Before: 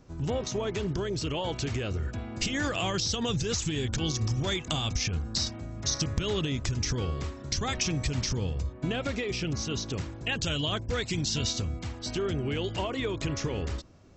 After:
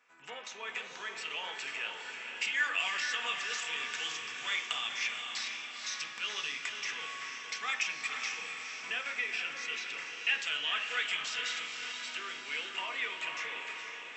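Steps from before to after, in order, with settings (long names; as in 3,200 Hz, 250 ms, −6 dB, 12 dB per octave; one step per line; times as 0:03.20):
high-pass filter 1,100 Hz 12 dB per octave
high shelf with overshoot 3,600 Hz −10 dB, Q 1.5
feedback delay with all-pass diffusion 483 ms, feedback 54%, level −5 dB
convolution reverb RT60 1.0 s, pre-delay 3 ms, DRR 4 dB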